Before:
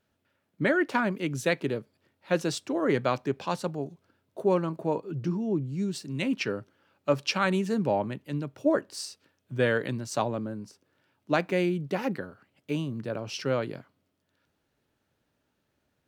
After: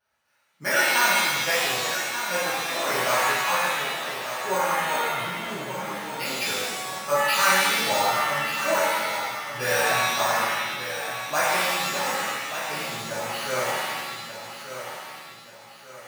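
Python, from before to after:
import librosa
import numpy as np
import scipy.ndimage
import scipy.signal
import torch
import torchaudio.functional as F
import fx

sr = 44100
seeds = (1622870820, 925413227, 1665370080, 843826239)

p1 = fx.low_shelf_res(x, sr, hz=530.0, db=-14.0, q=1.5)
p2 = p1 + fx.echo_feedback(p1, sr, ms=1184, feedback_pct=40, wet_db=-9.5, dry=0)
p3 = np.repeat(scipy.signal.resample_poly(p2, 1, 6), 6)[:len(p2)]
p4 = fx.rev_shimmer(p3, sr, seeds[0], rt60_s=1.3, semitones=7, shimmer_db=-2, drr_db=-10.0)
y = F.gain(torch.from_numpy(p4), -4.5).numpy()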